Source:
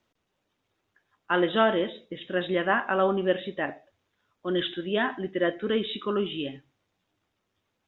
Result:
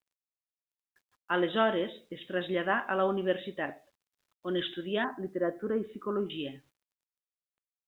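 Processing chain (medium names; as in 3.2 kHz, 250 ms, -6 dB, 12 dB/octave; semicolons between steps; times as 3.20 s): 5.04–6.30 s: low-pass 1.5 kHz 24 dB/octave; bit crusher 11-bit; trim -4.5 dB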